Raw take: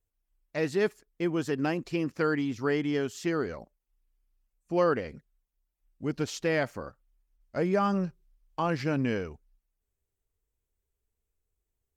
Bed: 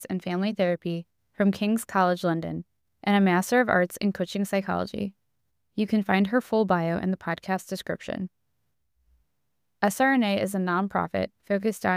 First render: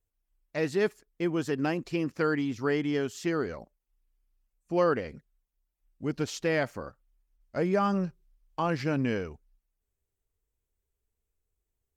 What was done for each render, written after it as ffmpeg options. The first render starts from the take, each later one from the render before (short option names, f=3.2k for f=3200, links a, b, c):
-af anull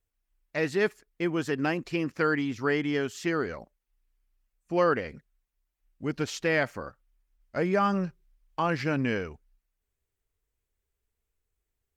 -af "equalizer=f=1.9k:w=0.82:g=5"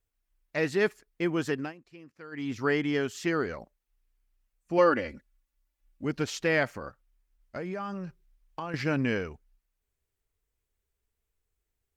-filter_complex "[0:a]asettb=1/sr,asplit=3[a][b][c];[a]atrim=end=4.784[d];[b]atrim=start=4.78:end=6.05,asetpts=PTS-STARTPTS,afade=t=in:d=0.004:c=qsin,afade=t=out:st=1.266:d=0.004:c=qsin,aecho=1:1:3.5:0.6,atrim=end_sample=56007[e];[c]atrim=start=6.046[f];[d][e]acrossfade=d=0.004:c1=hsin:c2=qsin[g];[g][f]acrossfade=d=0.004:c1=qsin:c2=hsin,asettb=1/sr,asplit=3[h][i][j];[h]atrim=end=6.774[k];[i]atrim=start=6.77:end=8.74,asetpts=PTS-STARTPTS,afade=t=in:d=0.004:c=qsin,afade=t=out:st=1.966:d=0.004:c=qsin,acompressor=threshold=-32dB:ratio=6:attack=3.2:release=140:knee=1:detection=peak[l];[j]atrim=start=8.736[m];[k][l]acrossfade=d=0.004:c1=hsin:c2=qsin[n];[n][m]acrossfade=d=0.004:c1=qsin:c2=hsin,asplit=3[o][p][q];[o]atrim=end=1.73,asetpts=PTS-STARTPTS,afade=t=out:st=1.51:d=0.22:silence=0.0944061[r];[p]atrim=start=1.73:end=2.31,asetpts=PTS-STARTPTS,volume=-20.5dB[s];[q]atrim=start=2.31,asetpts=PTS-STARTPTS,afade=t=in:d=0.22:silence=0.0944061[t];[r][s][t]concat=n=3:v=0:a=1"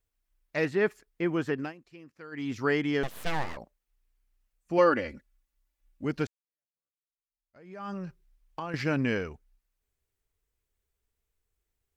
-filter_complex "[0:a]asettb=1/sr,asplit=3[a][b][c];[a]atrim=end=0.654[d];[b]atrim=start=0.65:end=1.63,asetpts=PTS-STARTPTS,afade=t=in:d=0.004:c=qsin,afade=t=out:st=0.976:d=0.004:c=qsin,acrossover=split=2800[e][f];[f]acompressor=threshold=-53dB:ratio=4:attack=1:release=60[g];[e][g]amix=inputs=2:normalize=0[h];[c]atrim=start=1.626[i];[d][h]acrossfade=d=0.004:c1=hsin:c2=qsin[j];[j][i]acrossfade=d=0.004:c1=qsin:c2=hsin,asettb=1/sr,asplit=3[k][l][m];[k]atrim=end=3.034[n];[l]atrim=start=3.03:end=3.57,asetpts=PTS-STARTPTS,afade=t=in:d=0.004:c=qsin,afade=t=out:st=0.536:d=0.004:c=qsin,aeval=exprs='abs(val(0))':c=same[o];[m]atrim=start=3.566[p];[n][o]acrossfade=d=0.004:c1=hsin:c2=qsin[q];[q][p]acrossfade=d=0.004:c1=qsin:c2=hsin,asplit=2[r][s];[r]atrim=end=6.27,asetpts=PTS-STARTPTS,afade=t=out:st=6.266:d=0.004:c=hsin[t];[s]atrim=start=6.27,asetpts=PTS-STARTPTS,afade=t=in:d=1.62:c=exp[u];[t][u]concat=n=2:v=0:a=1"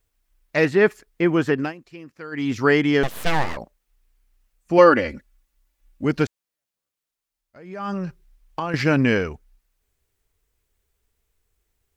-af "volume=9.5dB"